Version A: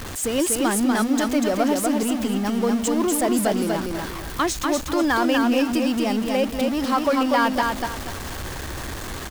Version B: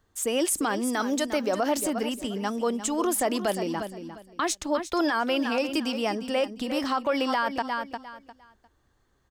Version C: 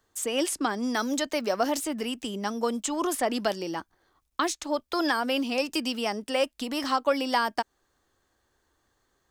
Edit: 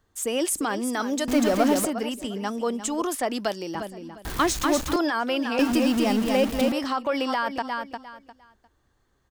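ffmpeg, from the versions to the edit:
-filter_complex "[0:a]asplit=3[a][b][c];[1:a]asplit=5[d][e][f][g][h];[d]atrim=end=1.282[i];[a]atrim=start=1.278:end=1.852[j];[e]atrim=start=1.848:end=3.022[k];[2:a]atrim=start=3.018:end=3.752[l];[f]atrim=start=3.748:end=4.252[m];[b]atrim=start=4.248:end=4.962[n];[g]atrim=start=4.958:end=5.592[o];[c]atrim=start=5.588:end=6.722[p];[h]atrim=start=6.718[q];[i][j]acrossfade=d=0.004:c1=hsin:c2=hsin[r];[r][k]acrossfade=d=0.004:c1=hsin:c2=hsin[s];[s][l]acrossfade=d=0.004:c1=hsin:c2=hsin[t];[t][m]acrossfade=d=0.004:c1=hsin:c2=hsin[u];[u][n]acrossfade=d=0.004:c1=hsin:c2=hsin[v];[v][o]acrossfade=d=0.004:c1=hsin:c2=hsin[w];[w][p]acrossfade=d=0.004:c1=hsin:c2=hsin[x];[x][q]acrossfade=d=0.004:c1=hsin:c2=hsin"

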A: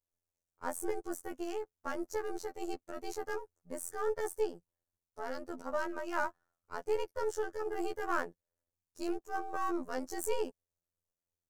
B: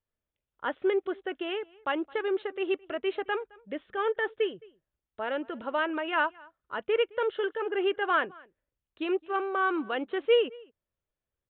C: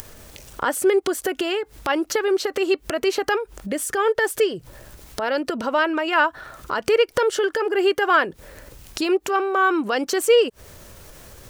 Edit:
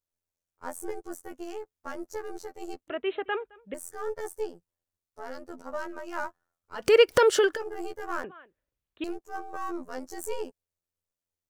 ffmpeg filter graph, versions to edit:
-filter_complex "[1:a]asplit=2[a][b];[0:a]asplit=4[c][d][e][f];[c]atrim=end=2.882[g];[a]atrim=start=2.878:end=3.742[h];[d]atrim=start=3.738:end=6.96[i];[2:a]atrim=start=6.72:end=7.65[j];[e]atrim=start=7.41:end=8.242[k];[b]atrim=start=8.238:end=9.042[l];[f]atrim=start=9.038[m];[g][h]acrossfade=d=0.004:c1=hsin:c2=hsin[n];[n][i]acrossfade=d=0.004:c1=hsin:c2=hsin[o];[o][j]acrossfade=d=0.24:c1=tri:c2=tri[p];[p][k]acrossfade=d=0.24:c1=tri:c2=tri[q];[q][l]acrossfade=d=0.004:c1=hsin:c2=hsin[r];[r][m]acrossfade=d=0.004:c1=hsin:c2=hsin"

